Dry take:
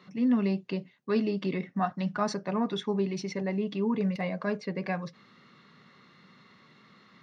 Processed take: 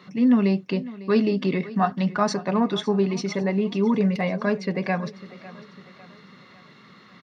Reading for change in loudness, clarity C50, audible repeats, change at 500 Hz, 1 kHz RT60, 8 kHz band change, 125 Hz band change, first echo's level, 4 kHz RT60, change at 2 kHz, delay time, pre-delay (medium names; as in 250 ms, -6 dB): +7.0 dB, no reverb, 3, +7.0 dB, no reverb, no reading, +7.0 dB, -18.0 dB, no reverb, +7.0 dB, 551 ms, no reverb